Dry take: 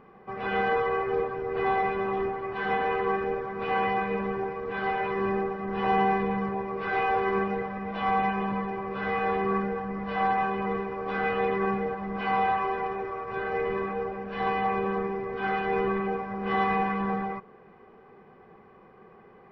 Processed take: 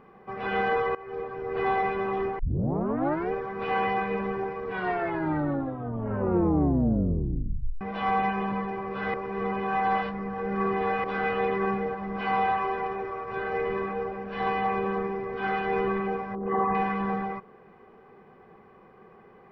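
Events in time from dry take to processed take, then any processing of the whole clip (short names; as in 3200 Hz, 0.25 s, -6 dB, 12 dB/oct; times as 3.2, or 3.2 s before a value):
0.95–1.56 fade in, from -19.5 dB
2.39 tape start 0.93 s
4.66 tape stop 3.15 s
9.14–11.04 reverse
16.35–16.75 formant sharpening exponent 2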